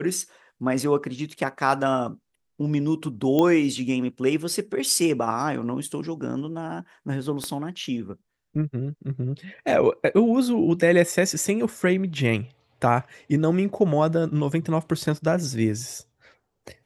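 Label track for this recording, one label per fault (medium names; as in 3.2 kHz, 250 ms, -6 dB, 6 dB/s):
3.390000	3.390000	pop -10 dBFS
7.440000	7.440000	pop -15 dBFS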